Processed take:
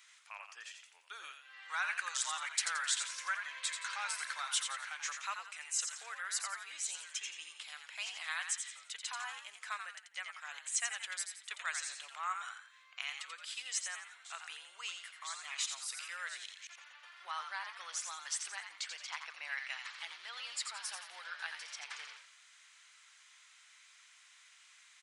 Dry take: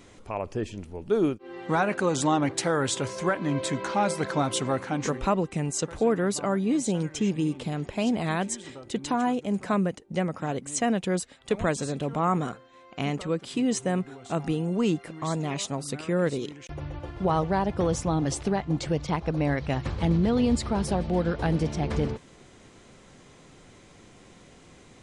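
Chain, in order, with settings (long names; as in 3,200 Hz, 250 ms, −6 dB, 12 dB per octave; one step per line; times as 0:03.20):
high-pass filter 1,400 Hz 24 dB per octave
on a send: echo with shifted repeats 86 ms, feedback 38%, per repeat +93 Hz, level −6.5 dB
on the sum: level −3.5 dB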